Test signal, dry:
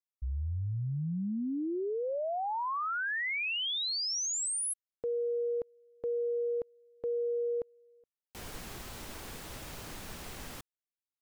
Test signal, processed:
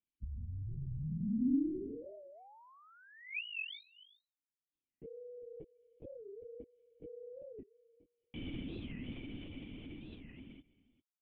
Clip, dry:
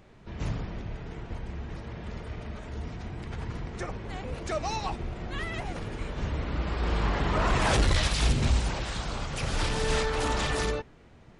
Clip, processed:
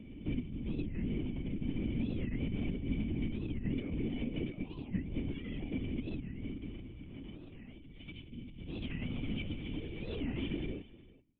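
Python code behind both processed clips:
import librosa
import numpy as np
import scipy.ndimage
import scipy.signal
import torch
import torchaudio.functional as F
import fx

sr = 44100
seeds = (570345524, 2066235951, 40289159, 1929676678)

y = fx.fade_out_tail(x, sr, length_s=3.53)
y = fx.over_compress(y, sr, threshold_db=-39.0, ratio=-1.0)
y = fx.formant_cascade(y, sr, vowel='i')
y = y + 10.0 ** (-19.5 / 20.0) * np.pad(y, (int(395 * sr / 1000.0), 0))[:len(y)]
y = fx.lpc_vocoder(y, sr, seeds[0], excitation='whisper', order=16)
y = fx.record_warp(y, sr, rpm=45.0, depth_cents=250.0)
y = F.gain(torch.from_numpy(y), 10.0).numpy()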